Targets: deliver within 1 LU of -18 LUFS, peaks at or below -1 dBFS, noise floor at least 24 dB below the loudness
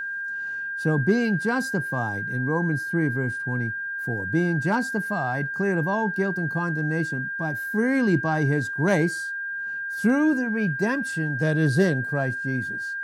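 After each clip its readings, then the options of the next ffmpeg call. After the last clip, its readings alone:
steady tone 1.6 kHz; tone level -28 dBFS; loudness -24.5 LUFS; peak level -9.5 dBFS; loudness target -18.0 LUFS
-> -af "bandreject=f=1600:w=30"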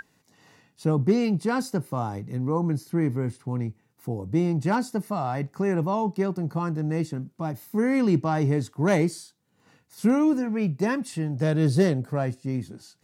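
steady tone not found; loudness -26.0 LUFS; peak level -10.5 dBFS; loudness target -18.0 LUFS
-> -af "volume=2.51"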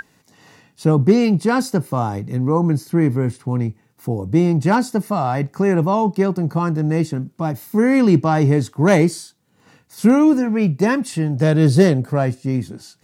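loudness -18.0 LUFS; peak level -2.5 dBFS; noise floor -59 dBFS

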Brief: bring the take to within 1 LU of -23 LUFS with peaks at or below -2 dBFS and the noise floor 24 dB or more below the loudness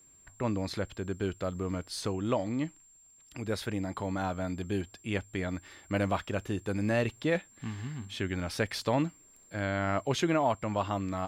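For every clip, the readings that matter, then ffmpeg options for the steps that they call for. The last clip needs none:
steady tone 7.4 kHz; tone level -57 dBFS; loudness -33.0 LUFS; peak level -15.5 dBFS; loudness target -23.0 LUFS
-> -af "bandreject=f=7400:w=30"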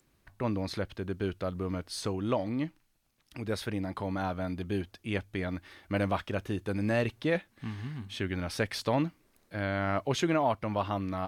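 steady tone not found; loudness -33.0 LUFS; peak level -15.5 dBFS; loudness target -23.0 LUFS
-> -af "volume=3.16"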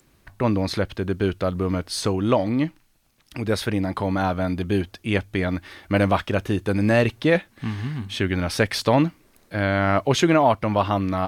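loudness -23.0 LUFS; peak level -5.5 dBFS; noise floor -60 dBFS

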